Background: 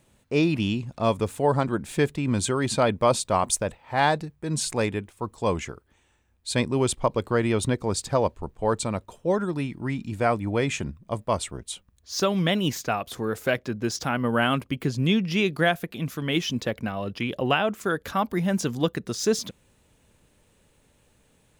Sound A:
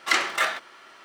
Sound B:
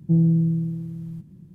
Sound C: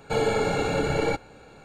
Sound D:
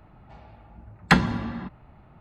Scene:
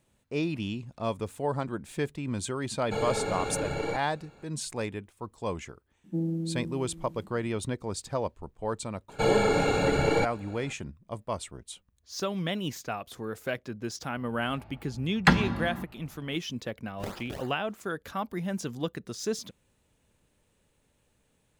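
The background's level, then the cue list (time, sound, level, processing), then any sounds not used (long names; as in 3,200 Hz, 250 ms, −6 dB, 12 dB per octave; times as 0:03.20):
background −8 dB
0:02.81: mix in C −7 dB
0:06.04: mix in B −2 dB + linear-phase brick-wall high-pass 180 Hz
0:09.09: mix in C
0:14.16: mix in D −2.5 dB
0:16.92: mix in A −17 dB, fades 0.10 s + sample-and-hold swept by an LFO 30× 3.3 Hz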